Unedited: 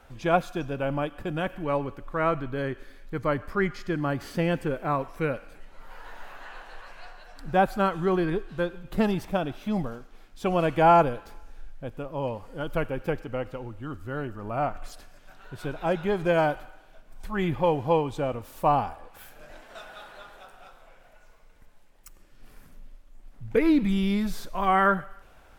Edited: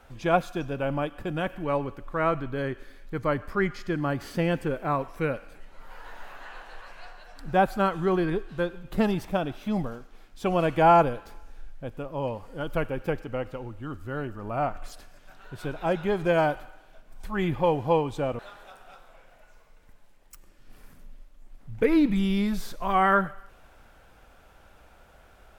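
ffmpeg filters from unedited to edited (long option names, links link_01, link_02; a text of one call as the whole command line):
ffmpeg -i in.wav -filter_complex "[0:a]asplit=2[link_01][link_02];[link_01]atrim=end=18.392[link_03];[link_02]atrim=start=20.118[link_04];[link_03][link_04]acrossfade=duration=0.004:curve1=hsin:curve2=hsin" out.wav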